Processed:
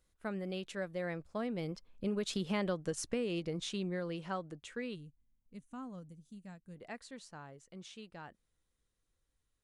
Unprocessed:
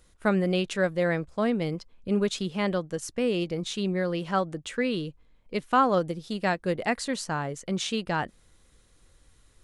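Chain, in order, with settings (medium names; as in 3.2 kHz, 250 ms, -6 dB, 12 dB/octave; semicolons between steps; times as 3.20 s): Doppler pass-by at 2.73 s, 7 m/s, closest 1.8 m; time-frequency box 4.95–6.76 s, 290–5800 Hz -13 dB; compression 4:1, threshold -38 dBFS, peak gain reduction 12.5 dB; trim +5 dB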